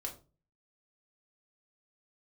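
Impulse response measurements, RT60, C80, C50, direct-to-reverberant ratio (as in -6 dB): 0.35 s, 17.0 dB, 11.5 dB, -0.5 dB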